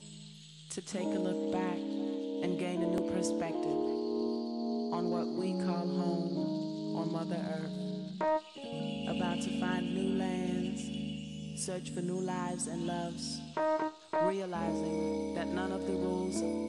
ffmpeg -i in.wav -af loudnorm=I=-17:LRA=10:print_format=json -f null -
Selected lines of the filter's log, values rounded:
"input_i" : "-35.0",
"input_tp" : "-19.9",
"input_lra" : "1.7",
"input_thresh" : "-45.1",